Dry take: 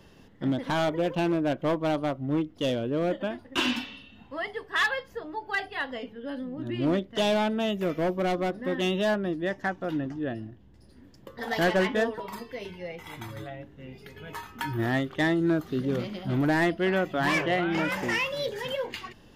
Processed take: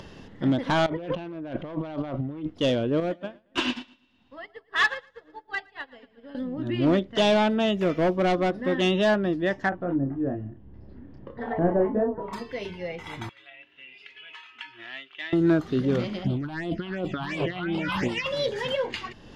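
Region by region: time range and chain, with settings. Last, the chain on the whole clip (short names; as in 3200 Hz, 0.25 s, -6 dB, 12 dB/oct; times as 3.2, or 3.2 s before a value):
0.86–2.5 LPF 4100 Hz + negative-ratio compressor -37 dBFS
3–6.35 feedback echo 0.114 s, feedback 54%, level -11 dB + upward expander 2.5:1, over -42 dBFS
9.69–12.33 doubler 29 ms -5 dB + treble ducked by the level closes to 820 Hz, closed at -24 dBFS + tape spacing loss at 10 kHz 43 dB
13.29–15.33 band-pass 2700 Hz, Q 4.3 + comb 3 ms, depth 35%
16.24–18.26 negative-ratio compressor -31 dBFS + phaser stages 6, 2.8 Hz, lowest notch 480–1800 Hz
whole clip: LPF 6600 Hz 12 dB/oct; upward compressor, threshold -42 dBFS; gain +4 dB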